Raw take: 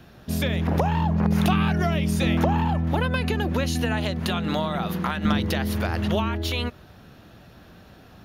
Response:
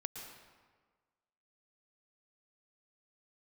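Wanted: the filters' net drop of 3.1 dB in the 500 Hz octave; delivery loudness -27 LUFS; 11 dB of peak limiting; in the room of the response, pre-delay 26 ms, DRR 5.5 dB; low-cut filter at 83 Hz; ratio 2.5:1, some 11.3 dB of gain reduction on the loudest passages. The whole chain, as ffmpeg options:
-filter_complex "[0:a]highpass=83,equalizer=f=500:t=o:g=-4,acompressor=threshold=-36dB:ratio=2.5,alimiter=level_in=6.5dB:limit=-24dB:level=0:latency=1,volume=-6.5dB,asplit=2[a][b];[1:a]atrim=start_sample=2205,adelay=26[c];[b][c]afir=irnorm=-1:irlink=0,volume=-4dB[d];[a][d]amix=inputs=2:normalize=0,volume=13.5dB"

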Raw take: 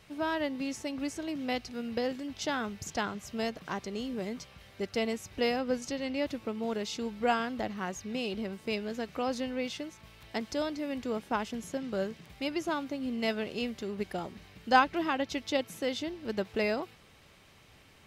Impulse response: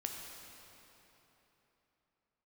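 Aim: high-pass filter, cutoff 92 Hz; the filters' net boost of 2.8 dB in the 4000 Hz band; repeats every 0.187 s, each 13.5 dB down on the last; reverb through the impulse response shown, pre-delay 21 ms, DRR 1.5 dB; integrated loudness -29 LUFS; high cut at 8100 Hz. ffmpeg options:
-filter_complex "[0:a]highpass=92,lowpass=8.1k,equalizer=f=4k:t=o:g=4,aecho=1:1:187|374:0.211|0.0444,asplit=2[a][b];[1:a]atrim=start_sample=2205,adelay=21[c];[b][c]afir=irnorm=-1:irlink=0,volume=-1.5dB[d];[a][d]amix=inputs=2:normalize=0,volume=2dB"

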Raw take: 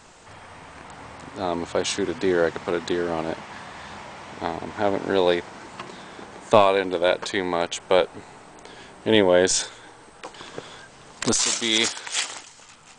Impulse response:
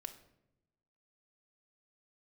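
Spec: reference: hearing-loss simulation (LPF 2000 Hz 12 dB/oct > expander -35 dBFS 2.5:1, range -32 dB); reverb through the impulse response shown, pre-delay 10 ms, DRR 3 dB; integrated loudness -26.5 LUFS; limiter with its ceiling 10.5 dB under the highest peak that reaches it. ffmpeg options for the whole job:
-filter_complex "[0:a]alimiter=limit=-12.5dB:level=0:latency=1,asplit=2[a][b];[1:a]atrim=start_sample=2205,adelay=10[c];[b][c]afir=irnorm=-1:irlink=0,volume=1dB[d];[a][d]amix=inputs=2:normalize=0,lowpass=2k,agate=range=-32dB:threshold=-35dB:ratio=2.5"

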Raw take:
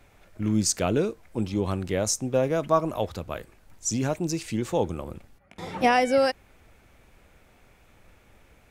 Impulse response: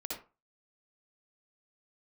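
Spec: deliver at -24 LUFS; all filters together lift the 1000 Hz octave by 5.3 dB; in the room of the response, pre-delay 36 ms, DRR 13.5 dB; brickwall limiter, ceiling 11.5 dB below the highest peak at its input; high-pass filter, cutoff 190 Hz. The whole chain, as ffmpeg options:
-filter_complex "[0:a]highpass=190,equalizer=f=1k:t=o:g=7.5,alimiter=limit=-16dB:level=0:latency=1,asplit=2[a][b];[1:a]atrim=start_sample=2205,adelay=36[c];[b][c]afir=irnorm=-1:irlink=0,volume=-14dB[d];[a][d]amix=inputs=2:normalize=0,volume=4.5dB"

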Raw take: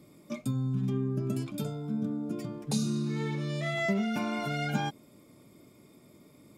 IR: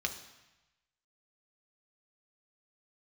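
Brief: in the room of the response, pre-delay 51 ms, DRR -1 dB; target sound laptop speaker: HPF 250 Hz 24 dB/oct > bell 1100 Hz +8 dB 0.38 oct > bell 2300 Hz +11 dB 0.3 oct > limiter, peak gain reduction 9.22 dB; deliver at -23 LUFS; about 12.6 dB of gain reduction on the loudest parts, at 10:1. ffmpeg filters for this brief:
-filter_complex "[0:a]acompressor=threshold=-37dB:ratio=10,asplit=2[a][b];[1:a]atrim=start_sample=2205,adelay=51[c];[b][c]afir=irnorm=-1:irlink=0,volume=-3dB[d];[a][d]amix=inputs=2:normalize=0,highpass=f=250:w=0.5412,highpass=f=250:w=1.3066,equalizer=f=1.1k:t=o:w=0.38:g=8,equalizer=f=2.3k:t=o:w=0.3:g=11,volume=20dB,alimiter=limit=-14.5dB:level=0:latency=1"

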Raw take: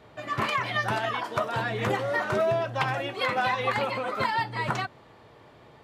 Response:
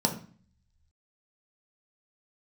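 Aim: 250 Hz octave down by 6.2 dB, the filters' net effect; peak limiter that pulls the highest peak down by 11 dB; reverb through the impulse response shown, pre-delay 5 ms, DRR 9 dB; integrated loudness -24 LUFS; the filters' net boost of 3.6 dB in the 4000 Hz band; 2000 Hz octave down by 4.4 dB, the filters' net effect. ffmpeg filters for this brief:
-filter_complex "[0:a]equalizer=f=250:t=o:g=-9,equalizer=f=2k:t=o:g=-7,equalizer=f=4k:t=o:g=7.5,alimiter=limit=-24dB:level=0:latency=1,asplit=2[a][b];[1:a]atrim=start_sample=2205,adelay=5[c];[b][c]afir=irnorm=-1:irlink=0,volume=-18.5dB[d];[a][d]amix=inputs=2:normalize=0,volume=7.5dB"

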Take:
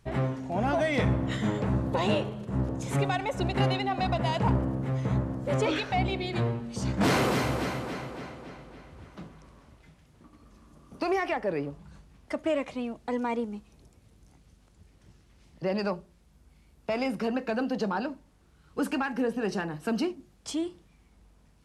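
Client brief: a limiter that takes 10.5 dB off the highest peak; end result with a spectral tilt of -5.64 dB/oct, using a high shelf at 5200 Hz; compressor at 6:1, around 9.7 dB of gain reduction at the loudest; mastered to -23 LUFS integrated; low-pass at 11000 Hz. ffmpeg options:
-af "lowpass=11k,highshelf=f=5.2k:g=-3.5,acompressor=threshold=-31dB:ratio=6,volume=17dB,alimiter=limit=-14dB:level=0:latency=1"

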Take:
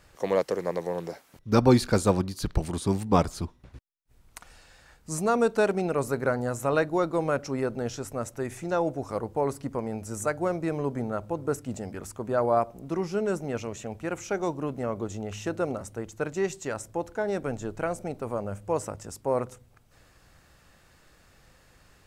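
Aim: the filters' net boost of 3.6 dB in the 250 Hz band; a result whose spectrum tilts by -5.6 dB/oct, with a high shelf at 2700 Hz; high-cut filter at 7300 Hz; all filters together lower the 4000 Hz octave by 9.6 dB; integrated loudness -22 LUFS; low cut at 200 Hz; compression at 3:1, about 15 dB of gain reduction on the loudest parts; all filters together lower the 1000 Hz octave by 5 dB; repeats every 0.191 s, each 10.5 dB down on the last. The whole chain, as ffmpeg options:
-af "highpass=200,lowpass=7.3k,equalizer=f=250:t=o:g=7,equalizer=f=1k:t=o:g=-6.5,highshelf=f=2.7k:g=-6,equalizer=f=4k:t=o:g=-6,acompressor=threshold=-32dB:ratio=3,aecho=1:1:191|382|573:0.299|0.0896|0.0269,volume=13.5dB"

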